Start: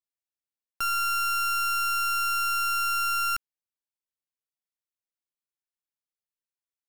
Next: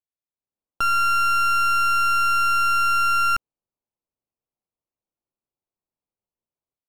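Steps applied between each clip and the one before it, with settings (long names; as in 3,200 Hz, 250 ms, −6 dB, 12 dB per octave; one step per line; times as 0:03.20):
adaptive Wiener filter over 25 samples
low-pass filter 2,600 Hz 6 dB per octave
automatic gain control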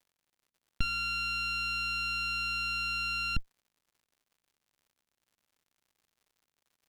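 lower of the sound and its delayed copy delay 0.52 ms
drawn EQ curve 260 Hz 0 dB, 390 Hz −13 dB, 1,500 Hz −13 dB, 3,400 Hz −3 dB, 6,300 Hz −18 dB
surface crackle 130 per second −60 dBFS
level +1.5 dB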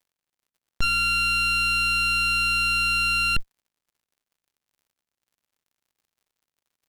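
leveller curve on the samples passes 3
level +1.5 dB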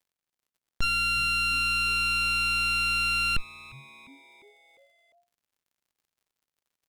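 echo with shifted repeats 351 ms, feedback 60%, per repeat −140 Hz, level −22 dB
level −3.5 dB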